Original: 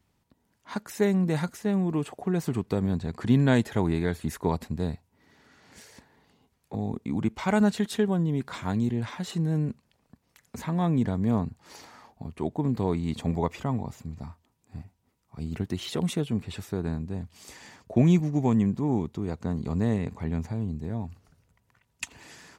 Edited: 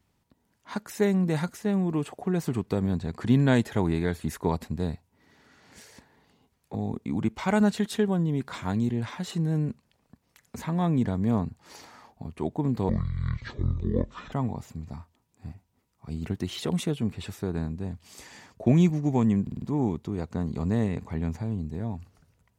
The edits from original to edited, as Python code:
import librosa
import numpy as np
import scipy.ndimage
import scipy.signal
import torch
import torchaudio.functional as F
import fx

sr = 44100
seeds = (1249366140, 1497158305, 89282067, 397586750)

y = fx.edit(x, sr, fx.speed_span(start_s=12.89, length_s=0.73, speed=0.51),
    fx.stutter(start_s=18.72, slice_s=0.05, count=5), tone=tone)